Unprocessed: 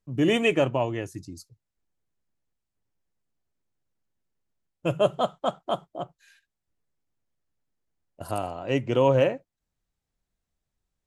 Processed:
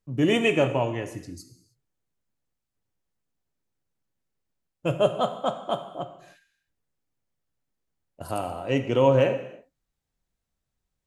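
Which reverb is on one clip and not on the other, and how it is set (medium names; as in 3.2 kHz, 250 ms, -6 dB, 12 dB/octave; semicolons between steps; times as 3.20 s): gated-style reverb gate 340 ms falling, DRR 7.5 dB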